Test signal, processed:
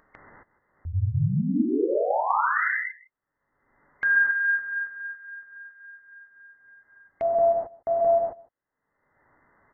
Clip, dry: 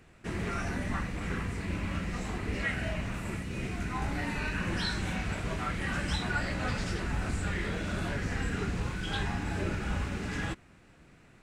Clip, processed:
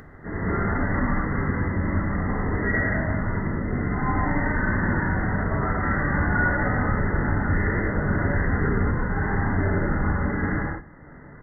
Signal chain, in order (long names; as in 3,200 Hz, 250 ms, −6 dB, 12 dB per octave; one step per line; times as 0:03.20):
linear-phase brick-wall low-pass 2,100 Hz
single-tap delay 158 ms −22 dB
reverb whose tail is shaped and stops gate 290 ms flat, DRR −8 dB
upward compression, threshold −39 dBFS
level +1.5 dB